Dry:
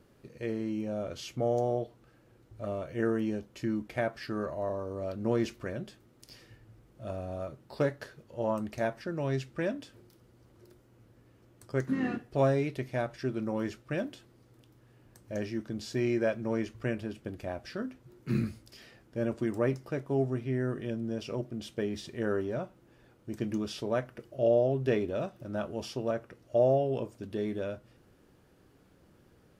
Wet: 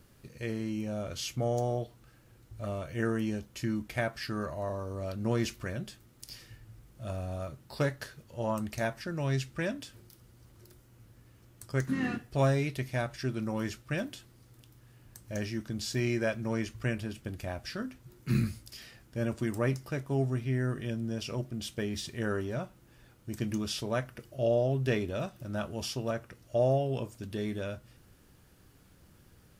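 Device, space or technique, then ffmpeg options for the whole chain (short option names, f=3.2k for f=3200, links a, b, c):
smiley-face EQ: -af "lowshelf=f=110:g=5,equalizer=f=420:t=o:w=2.1:g=-7,highshelf=f=5.7k:g=8.5,volume=3dB"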